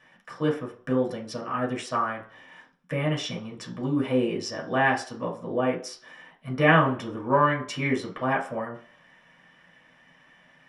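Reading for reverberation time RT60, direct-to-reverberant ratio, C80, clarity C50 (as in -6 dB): 0.45 s, -3.5 dB, 15.0 dB, 9.5 dB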